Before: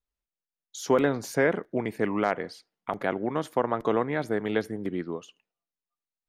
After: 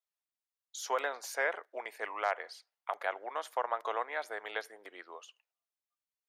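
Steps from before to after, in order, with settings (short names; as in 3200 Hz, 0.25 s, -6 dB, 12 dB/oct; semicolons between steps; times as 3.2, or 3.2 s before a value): HPF 630 Hz 24 dB/oct; gain -3.5 dB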